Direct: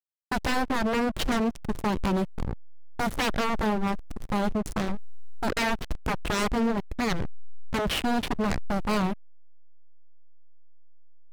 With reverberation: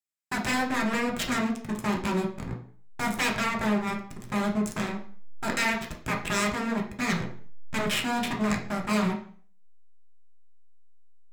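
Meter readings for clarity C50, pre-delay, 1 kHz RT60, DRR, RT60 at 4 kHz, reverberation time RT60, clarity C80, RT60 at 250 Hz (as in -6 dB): 8.5 dB, 3 ms, 0.45 s, -0.5 dB, 0.40 s, 0.50 s, 13.0 dB, 0.50 s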